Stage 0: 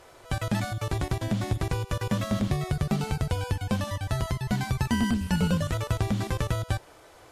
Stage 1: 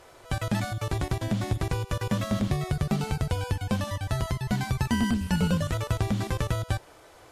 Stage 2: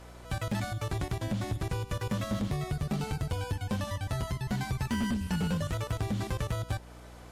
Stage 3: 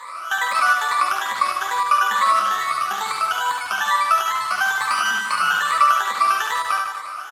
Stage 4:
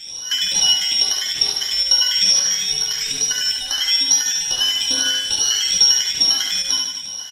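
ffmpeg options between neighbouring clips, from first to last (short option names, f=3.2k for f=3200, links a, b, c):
-af anull
-filter_complex "[0:a]asplit=2[a][b];[b]acompressor=threshold=-34dB:ratio=12,volume=-2.5dB[c];[a][c]amix=inputs=2:normalize=0,aeval=exprs='val(0)+0.00708*(sin(2*PI*60*n/s)+sin(2*PI*2*60*n/s)/2+sin(2*PI*3*60*n/s)/3+sin(2*PI*4*60*n/s)/4+sin(2*PI*5*60*n/s)/5)':c=same,asoftclip=type=hard:threshold=-19.5dB,volume=-5.5dB"
-filter_complex "[0:a]afftfilt=real='re*pow(10,19/40*sin(2*PI*(1*log(max(b,1)*sr/1024/100)/log(2)-(2.3)*(pts-256)/sr)))':imag='im*pow(10,19/40*sin(2*PI*(1*log(max(b,1)*sr/1024/100)/log(2)-(2.3)*(pts-256)/sr)))':win_size=1024:overlap=0.75,highpass=f=1.2k:t=q:w=8,asplit=2[a][b];[b]aecho=0:1:70|150.5|243.1|349.5|472:0.631|0.398|0.251|0.158|0.1[c];[a][c]amix=inputs=2:normalize=0,volume=8dB"
-af "afftfilt=real='real(if(lt(b,272),68*(eq(floor(b/68),0)*3+eq(floor(b/68),1)*2+eq(floor(b/68),2)*1+eq(floor(b/68),3)*0)+mod(b,68),b),0)':imag='imag(if(lt(b,272),68*(eq(floor(b/68),0)*3+eq(floor(b/68),1)*2+eq(floor(b/68),2)*1+eq(floor(b/68),3)*0)+mod(b,68),b),0)':win_size=2048:overlap=0.75,volume=1.5dB"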